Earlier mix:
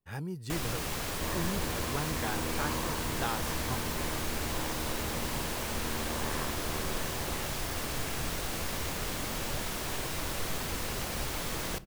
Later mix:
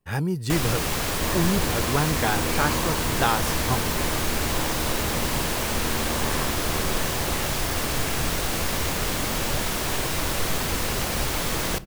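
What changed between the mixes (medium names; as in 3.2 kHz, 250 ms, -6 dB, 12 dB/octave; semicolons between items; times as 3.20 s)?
speech +12.0 dB; first sound +9.0 dB; second sound +7.0 dB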